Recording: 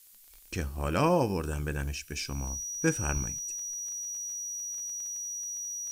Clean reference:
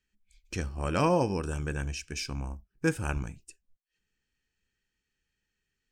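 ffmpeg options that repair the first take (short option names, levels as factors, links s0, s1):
-af "adeclick=t=4,bandreject=f=5800:w=30,afftdn=nr=30:nf=-49"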